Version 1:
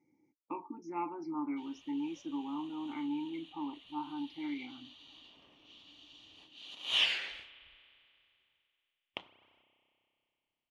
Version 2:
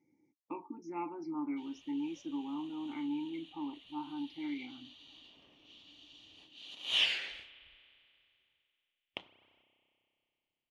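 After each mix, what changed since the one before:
master: add bell 1100 Hz -4.5 dB 1 oct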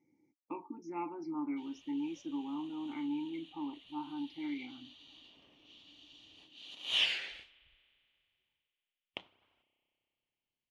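background: send -8.0 dB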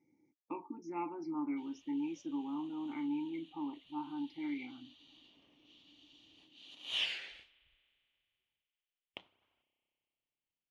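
background -5.0 dB

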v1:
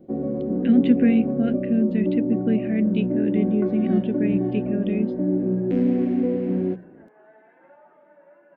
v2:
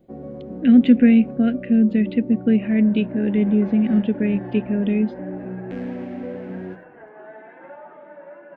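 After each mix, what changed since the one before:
speech +5.0 dB; first sound: add bell 290 Hz -11 dB 2.1 oct; second sound +11.5 dB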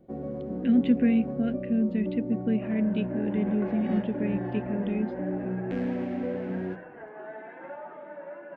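speech -9.5 dB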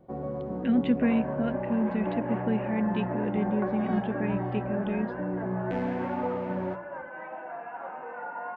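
second sound: entry -1.60 s; master: add graphic EQ 125/250/1000 Hz +4/-4/+11 dB

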